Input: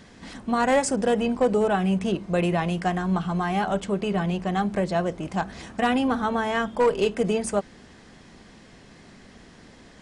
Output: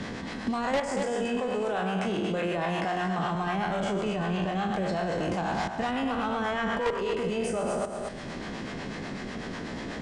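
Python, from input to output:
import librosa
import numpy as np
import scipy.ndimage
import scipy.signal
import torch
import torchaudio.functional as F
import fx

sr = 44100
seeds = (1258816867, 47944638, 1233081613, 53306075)

y = fx.spec_trails(x, sr, decay_s=1.06)
y = fx.highpass(y, sr, hz=280.0, slope=6, at=(1.03, 3.35))
y = fx.level_steps(y, sr, step_db=17)
y = fx.harmonic_tremolo(y, sr, hz=8.1, depth_pct=50, crossover_hz=490.0)
y = 10.0 ** (-28.0 / 20.0) * np.tanh(y / 10.0 ** (-28.0 / 20.0))
y = fx.air_absorb(y, sr, metres=54.0)
y = y + 10.0 ** (-8.5 / 20.0) * np.pad(y, (int(232 * sr / 1000.0), 0))[:len(y)]
y = fx.band_squash(y, sr, depth_pct=70)
y = y * 10.0 ** (8.0 / 20.0)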